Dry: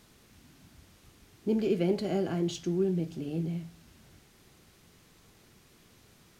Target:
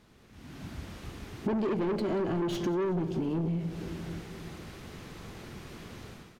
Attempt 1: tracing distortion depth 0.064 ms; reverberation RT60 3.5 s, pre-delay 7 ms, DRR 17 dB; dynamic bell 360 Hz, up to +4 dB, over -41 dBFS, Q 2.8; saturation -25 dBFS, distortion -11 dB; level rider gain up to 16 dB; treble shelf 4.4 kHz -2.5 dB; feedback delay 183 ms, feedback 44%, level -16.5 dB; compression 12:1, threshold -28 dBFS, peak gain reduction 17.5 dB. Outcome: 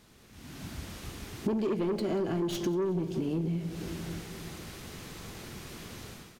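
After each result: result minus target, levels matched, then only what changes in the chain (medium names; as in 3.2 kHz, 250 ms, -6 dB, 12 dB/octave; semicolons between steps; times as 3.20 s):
8 kHz band +8.0 dB; saturation: distortion -5 dB
change: treble shelf 4.4 kHz -13 dB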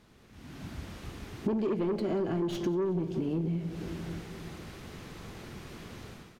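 saturation: distortion -5 dB
change: saturation -31.5 dBFS, distortion -6 dB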